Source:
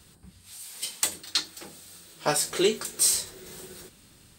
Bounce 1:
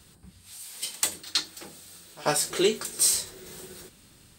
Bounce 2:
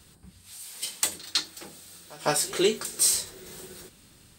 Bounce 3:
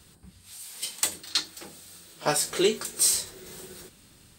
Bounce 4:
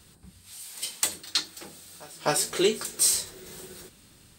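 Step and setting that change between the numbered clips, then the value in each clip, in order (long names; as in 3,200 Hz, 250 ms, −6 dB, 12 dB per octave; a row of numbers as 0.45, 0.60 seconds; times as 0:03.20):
echo ahead of the sound, delay time: 89, 156, 47, 255 milliseconds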